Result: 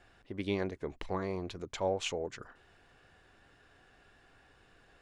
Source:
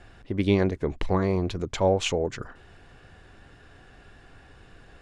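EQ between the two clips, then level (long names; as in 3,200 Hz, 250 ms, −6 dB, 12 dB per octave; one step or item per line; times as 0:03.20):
low-shelf EQ 260 Hz −8.5 dB
−8.0 dB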